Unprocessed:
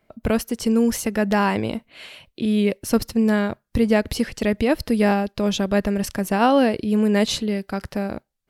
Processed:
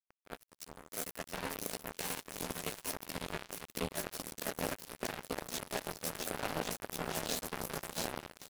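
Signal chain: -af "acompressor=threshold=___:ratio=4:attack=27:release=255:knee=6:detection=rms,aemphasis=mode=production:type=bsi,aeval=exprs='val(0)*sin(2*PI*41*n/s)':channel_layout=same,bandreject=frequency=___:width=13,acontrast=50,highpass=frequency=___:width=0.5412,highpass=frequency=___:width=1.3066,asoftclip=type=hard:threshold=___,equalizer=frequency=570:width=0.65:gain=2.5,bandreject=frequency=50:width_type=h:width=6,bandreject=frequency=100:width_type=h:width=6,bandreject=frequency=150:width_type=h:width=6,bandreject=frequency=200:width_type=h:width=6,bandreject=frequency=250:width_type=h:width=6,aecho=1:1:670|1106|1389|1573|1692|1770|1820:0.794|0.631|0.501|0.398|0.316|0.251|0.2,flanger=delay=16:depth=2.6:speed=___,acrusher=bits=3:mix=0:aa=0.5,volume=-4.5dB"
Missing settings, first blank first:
-31dB, 3.1k, 120, 120, -24dB, 1.6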